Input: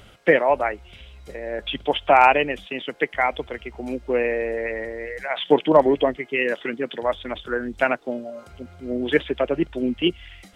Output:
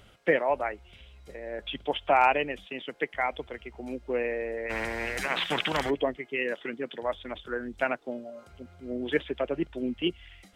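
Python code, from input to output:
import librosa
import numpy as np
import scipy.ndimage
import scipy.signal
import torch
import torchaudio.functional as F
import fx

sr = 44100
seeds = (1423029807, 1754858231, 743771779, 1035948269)

y = fx.spectral_comp(x, sr, ratio=4.0, at=(4.69, 5.89), fade=0.02)
y = F.gain(torch.from_numpy(y), -7.5).numpy()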